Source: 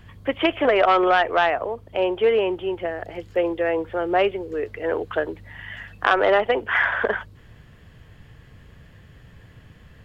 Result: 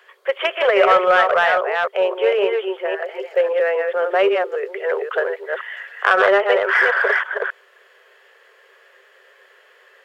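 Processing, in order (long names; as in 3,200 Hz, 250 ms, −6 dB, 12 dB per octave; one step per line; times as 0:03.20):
delay that plays each chunk backwards 268 ms, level −4 dB
Chebyshev high-pass with heavy ripple 380 Hz, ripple 6 dB
in parallel at −12 dB: hard clipping −21 dBFS, distortion −9 dB
on the sum: level +4 dB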